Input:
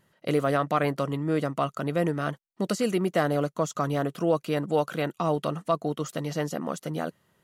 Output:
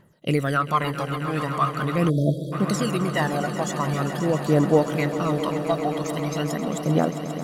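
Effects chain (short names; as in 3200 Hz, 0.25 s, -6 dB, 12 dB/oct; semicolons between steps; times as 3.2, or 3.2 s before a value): phaser 0.43 Hz, delay 1.4 ms, feedback 74%; swelling echo 0.133 s, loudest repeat 5, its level -13.5 dB; spectral delete 2.09–2.52, 680–3200 Hz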